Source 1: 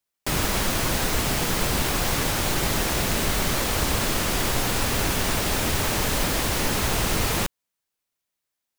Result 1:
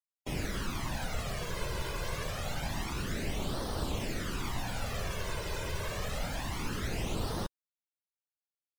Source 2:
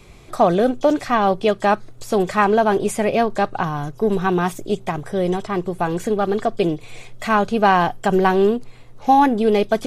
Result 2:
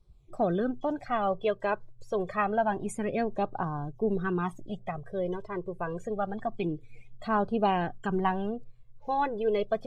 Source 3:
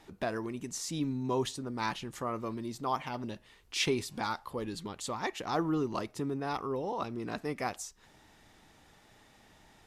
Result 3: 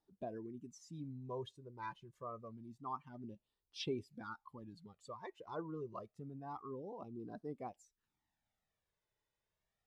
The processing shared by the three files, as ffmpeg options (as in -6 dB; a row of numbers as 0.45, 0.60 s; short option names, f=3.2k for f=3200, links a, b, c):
-af "afftdn=nr=19:nf=-32,flanger=delay=0.2:depth=1.8:regen=-5:speed=0.27:shape=sinusoidal,volume=-8dB"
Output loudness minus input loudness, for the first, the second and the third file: -13.5, -12.0, -12.5 LU